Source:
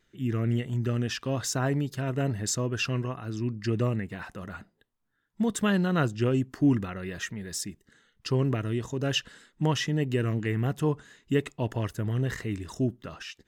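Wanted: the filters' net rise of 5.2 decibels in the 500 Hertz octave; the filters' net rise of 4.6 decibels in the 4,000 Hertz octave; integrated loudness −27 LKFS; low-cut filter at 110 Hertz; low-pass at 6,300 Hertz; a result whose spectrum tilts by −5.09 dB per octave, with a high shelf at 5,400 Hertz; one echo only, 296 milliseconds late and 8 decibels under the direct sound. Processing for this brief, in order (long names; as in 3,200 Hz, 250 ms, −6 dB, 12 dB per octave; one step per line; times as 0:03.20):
high-pass filter 110 Hz
low-pass filter 6,300 Hz
parametric band 500 Hz +6.5 dB
parametric band 4,000 Hz +4 dB
high-shelf EQ 5,400 Hz +8 dB
single-tap delay 296 ms −8 dB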